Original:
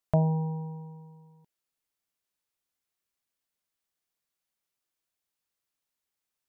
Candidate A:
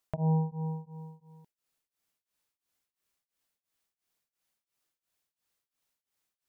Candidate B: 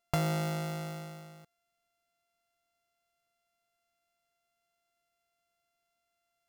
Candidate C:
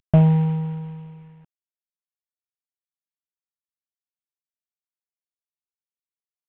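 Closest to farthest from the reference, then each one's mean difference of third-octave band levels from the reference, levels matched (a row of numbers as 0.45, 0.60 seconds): A, C, B; 1.5, 3.5, 18.0 decibels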